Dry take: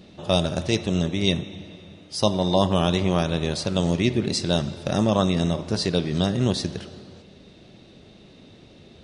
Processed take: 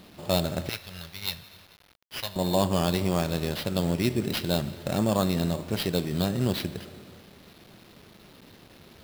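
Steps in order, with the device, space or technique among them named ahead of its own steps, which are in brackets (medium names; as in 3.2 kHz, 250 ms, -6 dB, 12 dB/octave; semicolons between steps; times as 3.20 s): 0.69–2.36 s: amplifier tone stack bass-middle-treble 10-0-10; early 8-bit sampler (sample-rate reducer 7.9 kHz, jitter 0%; bit crusher 8-bit); trim -4 dB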